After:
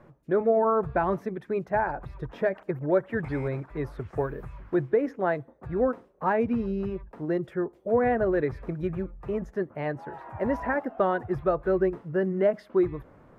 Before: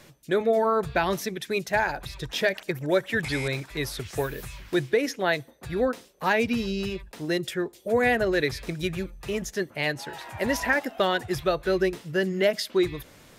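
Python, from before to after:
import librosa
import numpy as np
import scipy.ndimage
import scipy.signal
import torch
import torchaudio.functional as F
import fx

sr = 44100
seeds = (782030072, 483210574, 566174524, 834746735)

y = fx.curve_eq(x, sr, hz=(1200.0, 3700.0, 5900.0), db=(0, -26, -29))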